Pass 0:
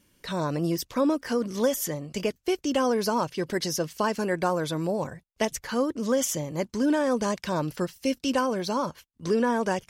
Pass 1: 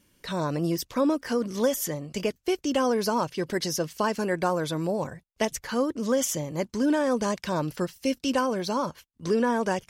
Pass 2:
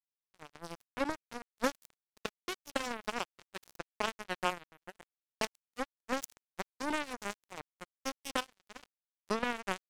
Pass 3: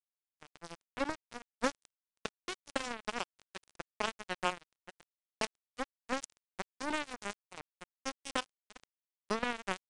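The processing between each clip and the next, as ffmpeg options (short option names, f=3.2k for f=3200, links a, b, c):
-af anull
-af "acrusher=bits=2:mix=0:aa=0.5,volume=-4.5dB"
-af "aeval=exprs='sgn(val(0))*max(abs(val(0))-0.0075,0)':c=same,aresample=22050,aresample=44100"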